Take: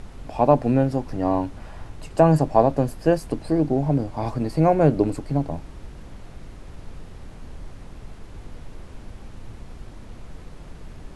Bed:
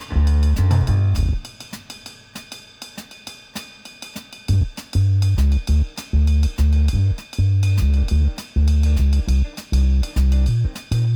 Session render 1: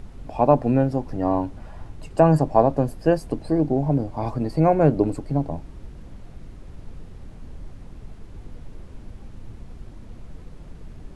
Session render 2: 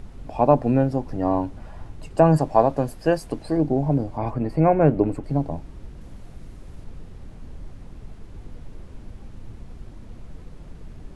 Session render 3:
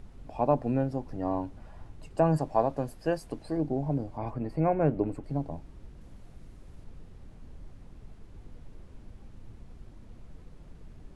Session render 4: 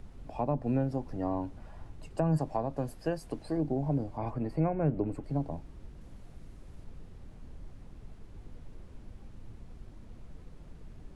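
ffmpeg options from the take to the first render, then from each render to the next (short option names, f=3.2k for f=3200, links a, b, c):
-af "afftdn=nr=6:nf=-42"
-filter_complex "[0:a]asettb=1/sr,asplit=3[a][b][c];[a]atrim=end=2.374[d];[b]atrim=start=2.37:end=3.57,asetpts=PTS-STARTPTS,afade=t=in:d=0.004:c=qsin,afade=t=out:st=1.196:d=0.004:c=qsin,tiltshelf=f=690:g=-3.5[e];[c]atrim=start=3.566[f];[d][e]acrossfade=d=0.004:c1=hsin:c2=qsin[g];[g][f]acrossfade=d=0.004:c1=qsin:c2=hsin,asettb=1/sr,asplit=3[h][i][j];[h]atrim=end=4.174[k];[i]atrim=start=4.17:end=5.24,asetpts=PTS-STARTPTS,afade=t=in:d=0.004:c=qsin,afade=t=out:st=1.066:d=0.004:c=qsin,highshelf=f=3.2k:t=q:w=1.5:g=-6.5[l];[j]atrim=start=5.236[m];[k][l]acrossfade=d=0.004:c1=hsin:c2=qsin[n];[n][m]acrossfade=d=0.004:c1=qsin:c2=hsin,asettb=1/sr,asplit=3[o][p][q];[o]atrim=end=6.014[r];[p]atrim=start=6.01:end=6.84,asetpts=PTS-STARTPTS,afade=t=in:d=0.004:c=qsin,afade=t=out:st=0.826:d=0.004:c=qsin,highshelf=f=7.4k:g=7[s];[q]atrim=start=6.836[t];[r][s]acrossfade=d=0.004:c1=hsin:c2=qsin[u];[u][t]acrossfade=d=0.004:c1=qsin:c2=hsin"
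-af "volume=-8.5dB"
-filter_complex "[0:a]acrossover=split=240[a][b];[b]acompressor=threshold=-29dB:ratio=6[c];[a][c]amix=inputs=2:normalize=0"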